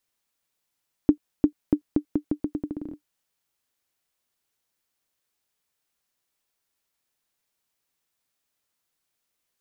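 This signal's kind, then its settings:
bouncing ball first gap 0.35 s, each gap 0.82, 297 Hz, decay 88 ms −5.5 dBFS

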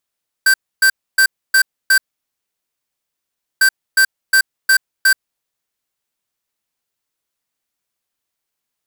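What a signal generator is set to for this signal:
beeps in groups square 1,560 Hz, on 0.08 s, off 0.28 s, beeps 5, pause 1.63 s, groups 2, −10.5 dBFS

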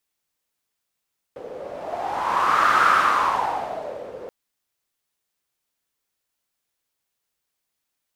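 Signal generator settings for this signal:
wind from filtered noise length 2.93 s, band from 500 Hz, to 1,300 Hz, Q 5.9, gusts 1, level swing 19 dB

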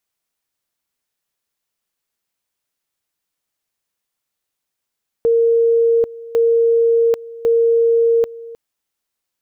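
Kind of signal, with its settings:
tone at two levels in turn 462 Hz −10.5 dBFS, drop 19.5 dB, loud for 0.79 s, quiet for 0.31 s, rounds 3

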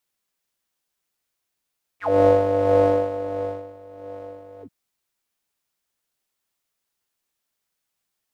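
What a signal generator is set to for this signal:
subtractive patch with tremolo G2, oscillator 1 square, noise −13 dB, filter bandpass, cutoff 160 Hz, Q 12, filter envelope 4 octaves, filter decay 0.08 s, filter sustain 45%, attack 283 ms, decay 1.34 s, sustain −23.5 dB, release 0.07 s, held 2.62 s, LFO 1.5 Hz, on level 8 dB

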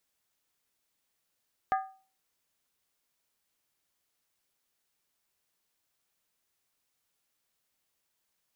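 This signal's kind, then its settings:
struck skin, lowest mode 767 Hz, decay 0.39 s, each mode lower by 6 dB, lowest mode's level −22 dB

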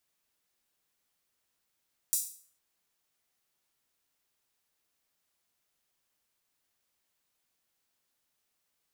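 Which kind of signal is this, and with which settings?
open synth hi-hat length 0.46 s, high-pass 7,400 Hz, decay 0.47 s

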